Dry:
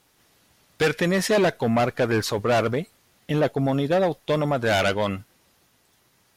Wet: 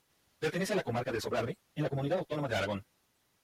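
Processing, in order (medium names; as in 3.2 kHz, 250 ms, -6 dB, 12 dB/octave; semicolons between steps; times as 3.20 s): plain phase-vocoder stretch 0.54×; trim -7.5 dB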